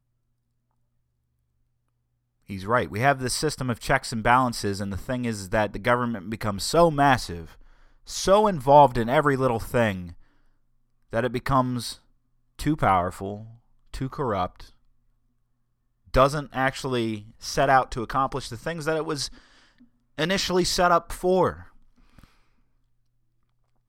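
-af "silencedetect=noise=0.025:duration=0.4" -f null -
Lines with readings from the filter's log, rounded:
silence_start: 0.00
silence_end: 2.50 | silence_duration: 2.50
silence_start: 7.43
silence_end: 8.09 | silence_duration: 0.66
silence_start: 10.11
silence_end: 11.13 | silence_duration: 1.02
silence_start: 11.93
silence_end: 12.59 | silence_duration: 0.67
silence_start: 13.42
silence_end: 13.94 | silence_duration: 0.52
silence_start: 14.61
silence_end: 16.14 | silence_duration: 1.53
silence_start: 19.28
silence_end: 20.19 | silence_duration: 0.91
silence_start: 21.54
silence_end: 23.88 | silence_duration: 2.34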